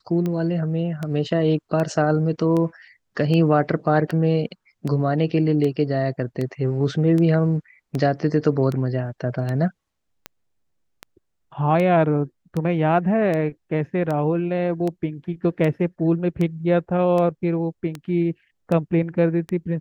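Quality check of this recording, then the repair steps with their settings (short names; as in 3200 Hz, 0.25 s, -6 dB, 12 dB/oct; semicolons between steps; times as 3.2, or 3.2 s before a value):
tick 78 rpm -15 dBFS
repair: de-click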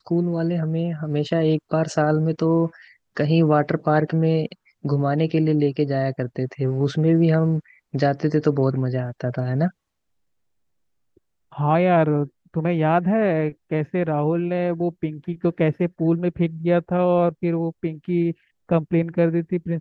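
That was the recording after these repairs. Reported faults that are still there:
none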